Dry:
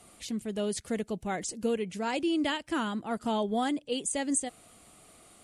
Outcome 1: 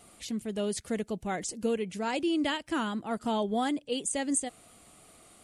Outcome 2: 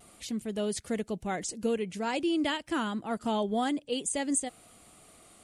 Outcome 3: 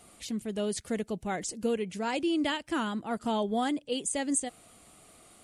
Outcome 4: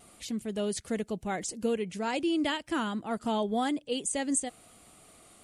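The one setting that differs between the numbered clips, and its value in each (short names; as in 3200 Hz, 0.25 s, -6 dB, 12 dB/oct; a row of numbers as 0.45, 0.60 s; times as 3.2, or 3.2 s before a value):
vibrato, rate: 2.8, 0.51, 4.9, 0.89 Hz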